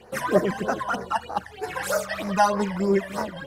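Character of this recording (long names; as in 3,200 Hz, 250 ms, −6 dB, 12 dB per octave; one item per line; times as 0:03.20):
phaser sweep stages 12, 3.2 Hz, lowest notch 390–3,200 Hz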